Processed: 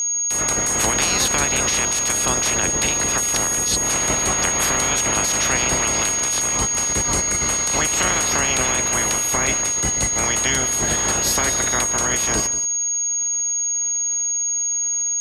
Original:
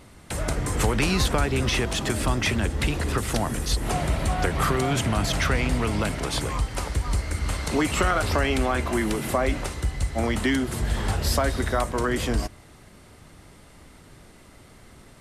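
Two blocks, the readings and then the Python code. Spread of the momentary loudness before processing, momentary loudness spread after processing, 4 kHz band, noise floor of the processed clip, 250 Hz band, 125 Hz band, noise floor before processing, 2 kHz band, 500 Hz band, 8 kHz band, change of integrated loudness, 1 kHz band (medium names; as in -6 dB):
6 LU, 2 LU, +6.5 dB, -22 dBFS, -3.0 dB, -5.5 dB, -50 dBFS, +5.0 dB, 0.0 dB, +21.0 dB, +7.5 dB, +3.0 dB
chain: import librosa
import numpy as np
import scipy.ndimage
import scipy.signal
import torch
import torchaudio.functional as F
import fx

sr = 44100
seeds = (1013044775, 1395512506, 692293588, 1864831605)

y = fx.spec_clip(x, sr, under_db=22)
y = y + 10.0 ** (-14.5 / 20.0) * np.pad(y, (int(182 * sr / 1000.0), 0))[:len(y)]
y = y + 10.0 ** (-19.0 / 20.0) * np.sin(2.0 * np.pi * 6600.0 * np.arange(len(y)) / sr)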